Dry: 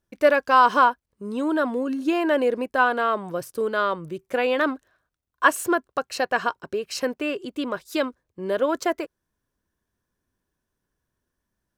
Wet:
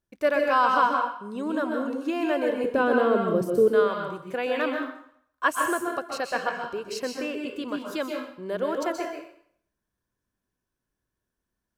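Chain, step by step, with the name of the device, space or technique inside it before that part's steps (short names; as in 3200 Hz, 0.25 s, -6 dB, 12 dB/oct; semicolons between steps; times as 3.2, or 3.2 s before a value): 2.64–3.68 resonant low shelf 600 Hz +10.5 dB, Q 1.5; bathroom (reverb RT60 0.65 s, pre-delay 0.119 s, DRR 1.5 dB); gain -6 dB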